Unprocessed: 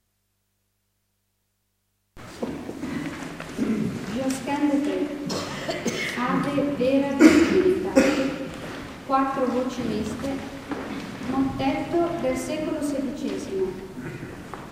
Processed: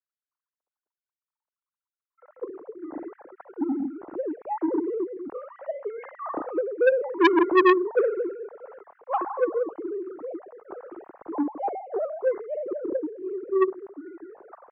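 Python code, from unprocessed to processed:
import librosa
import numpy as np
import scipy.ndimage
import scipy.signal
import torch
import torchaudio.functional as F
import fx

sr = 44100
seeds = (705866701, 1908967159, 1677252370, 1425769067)

y = fx.sine_speech(x, sr)
y = scipy.signal.sosfilt(scipy.signal.butter(4, 1200.0, 'lowpass', fs=sr, output='sos'), y)
y = fx.transformer_sat(y, sr, knee_hz=1500.0)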